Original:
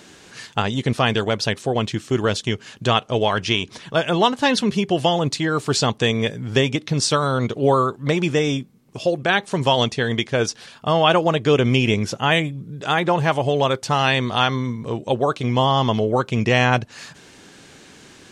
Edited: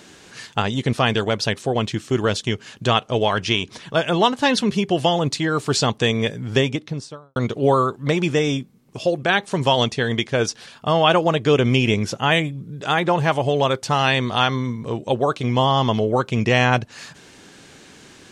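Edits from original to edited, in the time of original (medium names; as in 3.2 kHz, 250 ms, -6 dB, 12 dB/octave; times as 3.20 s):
6.52–7.36 s: studio fade out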